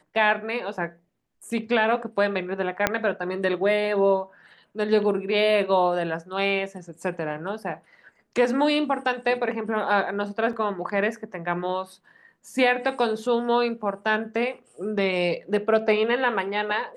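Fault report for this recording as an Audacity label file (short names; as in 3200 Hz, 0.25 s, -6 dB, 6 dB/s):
2.870000	2.870000	pop -5 dBFS
10.530000	10.530000	gap 3.1 ms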